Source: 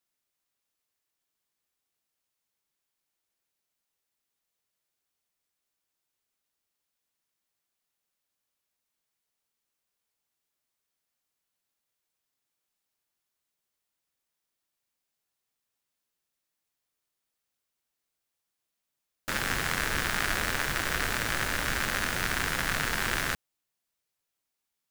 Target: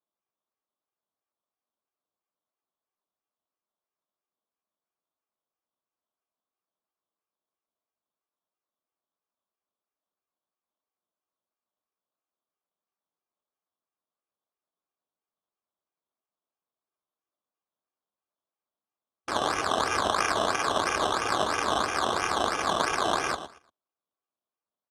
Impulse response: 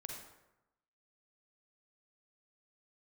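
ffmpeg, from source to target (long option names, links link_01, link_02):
-af "afwtdn=0.00891,aecho=1:1:2.5:0.8,aecho=1:1:116|232|348:0.251|0.0578|0.0133,acrusher=samples=15:mix=1:aa=0.000001:lfo=1:lforange=9:lforate=3,highpass=130,equalizer=frequency=130:width_type=q:width=4:gain=-9,equalizer=frequency=630:width_type=q:width=4:gain=6,equalizer=frequency=1100:width_type=q:width=4:gain=7,equalizer=frequency=1900:width_type=q:width=4:gain=-8,equalizer=frequency=3400:width_type=q:width=4:gain=7,lowpass=frequency=9300:width=0.5412,lowpass=frequency=9300:width=1.3066"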